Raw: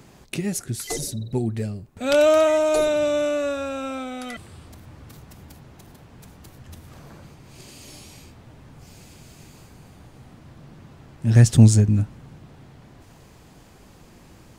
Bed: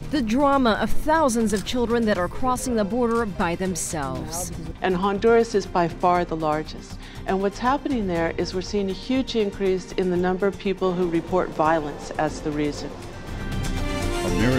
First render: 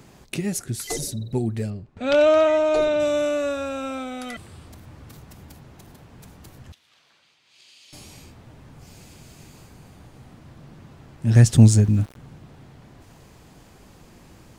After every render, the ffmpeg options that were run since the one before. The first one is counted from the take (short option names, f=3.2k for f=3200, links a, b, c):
-filter_complex "[0:a]asettb=1/sr,asplit=3[a][b][c];[a]atrim=end=1.704[d];[b]atrim=start=1.7:end=3,asetpts=PTS-STARTPTS,afade=t=in:d=0.004:c=qsin,afade=t=out:st=1.296:d=0.004:c=qsin,lowpass=4.2k[e];[c]atrim=start=2.996[f];[d][e]acrossfade=d=0.004:c1=hsin:c2=qsin[g];[g][f]acrossfade=d=0.004:c1=qsin:c2=hsin,asettb=1/sr,asplit=3[h][i][j];[h]atrim=end=6.724[k];[i]atrim=start=6.72:end=7.93,asetpts=PTS-STARTPTS,afade=t=in:d=0.004:c=qsin,afade=t=out:st=1.206:d=0.004:c=qsin,bandpass=f=3.4k:t=q:w=1.8[l];[j]atrim=start=7.926[m];[k][l]acrossfade=d=0.004:c1=hsin:c2=qsin[n];[n][m]acrossfade=d=0.004:c1=qsin:c2=hsin,asplit=3[o][p][q];[o]afade=t=out:st=11.57:d=0.02[r];[p]aeval=exprs='val(0)*gte(abs(val(0)),0.0126)':c=same,afade=t=in:st=11.57:d=0.02,afade=t=out:st=12.15:d=0.02[s];[q]afade=t=in:st=12.15:d=0.02[t];[r][s][t]amix=inputs=3:normalize=0"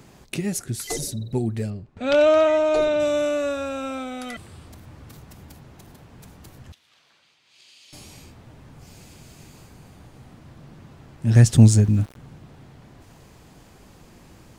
-af anull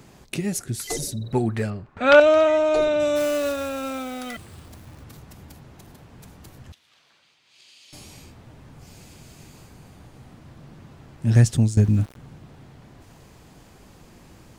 -filter_complex "[0:a]asettb=1/sr,asplit=3[a][b][c];[a]atrim=end=1.244[d];[b]atrim=start=1.24:end=2.2,asetpts=PTS-STARTPTS,afade=t=in:d=0.004:c=qsin,afade=t=out:st=0.956:d=0.004:c=qsin,equalizer=f=1.3k:t=o:w=2:g=13[e];[c]atrim=start=2.196[f];[d][e]acrossfade=d=0.004:c1=hsin:c2=qsin[g];[g][f]acrossfade=d=0.004:c1=qsin:c2=hsin,asplit=3[h][i][j];[h]afade=t=out:st=3.15:d=0.02[k];[i]acrusher=bits=3:mode=log:mix=0:aa=0.000001,afade=t=in:st=3.15:d=0.02,afade=t=out:st=5.02:d=0.02[l];[j]afade=t=in:st=5.02:d=0.02[m];[k][l][m]amix=inputs=3:normalize=0,asplit=2[n][o];[n]atrim=end=11.77,asetpts=PTS-STARTPTS,afade=t=out:st=11.28:d=0.49:silence=0.177828[p];[o]atrim=start=11.77,asetpts=PTS-STARTPTS,afade=t=in:d=0.004:c=hsin:silence=0.177828[q];[p][q]concat=n=2:v=0:a=1"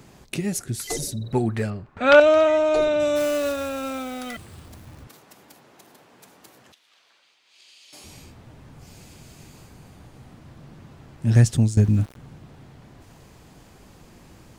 -filter_complex "[0:a]asettb=1/sr,asplit=3[a][b][c];[a]atrim=end=5.074[d];[b]atrim=start=5.07:end=8.04,asetpts=PTS-STARTPTS,afade=t=in:d=0.004:c=qsin,afade=t=out:st=2.966:d=0.004:c=qsin,highpass=340[e];[c]atrim=start=8.036[f];[d][e]acrossfade=d=0.004:c1=hsin:c2=qsin[g];[g][f]acrossfade=d=0.004:c1=qsin:c2=hsin"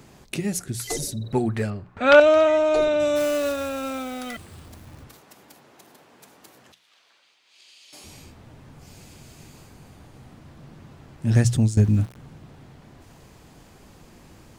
-af "bandreject=f=60:t=h:w=6,bandreject=f=120:t=h:w=6,bandreject=f=180:t=h:w=6"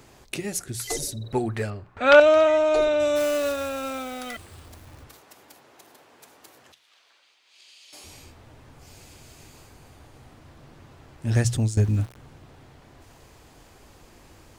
-af "equalizer=f=180:t=o:w=0.99:g=-9"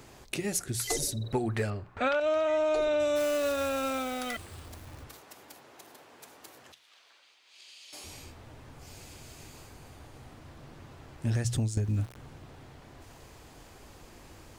-af "alimiter=limit=-13.5dB:level=0:latency=1:release=200,acompressor=threshold=-25dB:ratio=6"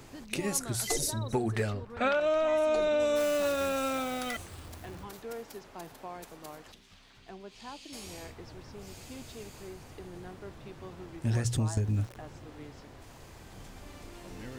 -filter_complex "[1:a]volume=-24dB[a];[0:a][a]amix=inputs=2:normalize=0"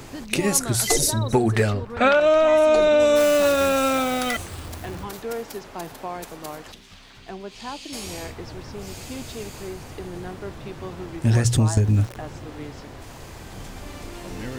-af "volume=10.5dB"